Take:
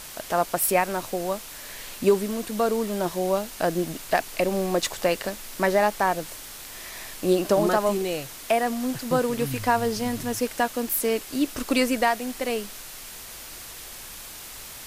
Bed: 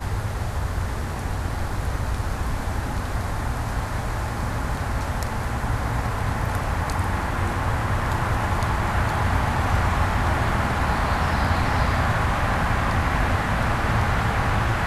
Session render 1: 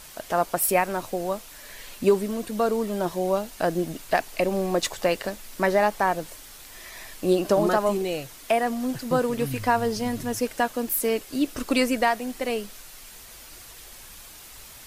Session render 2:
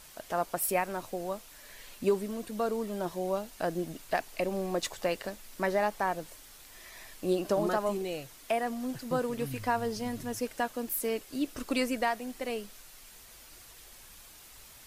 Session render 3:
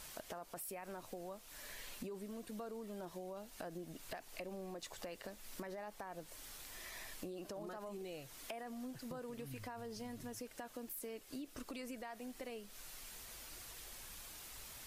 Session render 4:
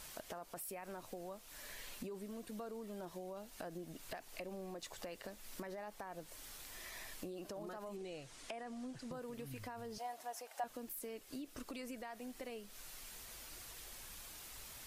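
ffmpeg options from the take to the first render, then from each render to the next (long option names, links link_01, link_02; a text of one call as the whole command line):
ffmpeg -i in.wav -af "afftdn=noise_reduction=6:noise_floor=-41" out.wav
ffmpeg -i in.wav -af "volume=-7.5dB" out.wav
ffmpeg -i in.wav -af "alimiter=level_in=2dB:limit=-24dB:level=0:latency=1:release=36,volume=-2dB,acompressor=threshold=-45dB:ratio=6" out.wav
ffmpeg -i in.wav -filter_complex "[0:a]asettb=1/sr,asplit=3[link_01][link_02][link_03];[link_01]atrim=end=7.964[link_04];[link_02]atrim=start=7.96:end=9.12,asetpts=PTS-STARTPTS,afade=type=in:duration=0.004:curve=qsin,afade=type=out:start_time=1.156:duration=0.004:curve=qsin,lowpass=frequency=9300:width=0.5412,lowpass=frequency=9300:width=1.3066[link_05];[link_03]atrim=start=9.116[link_06];[link_04][link_05]acrossfade=duration=0.004:curve1=hsin:curve2=qsin[link_07];[link_07][link_06]acrossfade=duration=0.004:curve1=qsin:curve2=hsin,asettb=1/sr,asplit=3[link_08][link_09][link_10];[link_08]atrim=end=9.984[link_11];[link_09]atrim=start=9.98:end=10.64,asetpts=PTS-STARTPTS,afade=type=in:duration=0.004:curve=qsin,afade=type=out:start_time=0.656:duration=0.004:curve=qsin,highpass=frequency=740:width_type=q:width=4.8[link_12];[link_10]atrim=start=10.636[link_13];[link_11][link_12]acrossfade=duration=0.004:curve1=hsin:curve2=qsin[link_14];[link_14][link_13]acrossfade=duration=0.004:curve1=qsin:curve2=hsin" out.wav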